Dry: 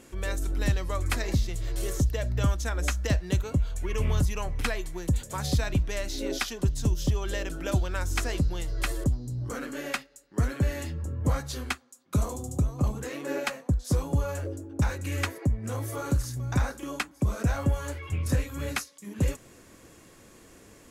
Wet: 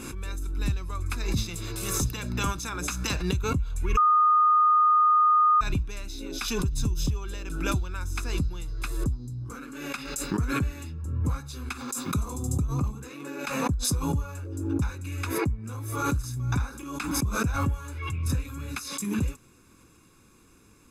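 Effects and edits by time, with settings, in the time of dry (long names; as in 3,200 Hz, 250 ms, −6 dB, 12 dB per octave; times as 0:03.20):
0:01.36–0:03.21: ceiling on every frequency bin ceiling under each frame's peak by 20 dB
0:03.97–0:05.61: beep over 1,230 Hz −14 dBFS
whole clip: comb filter 0.8 ms, depth 68%; background raised ahead of every attack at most 39 dB per second; level −7 dB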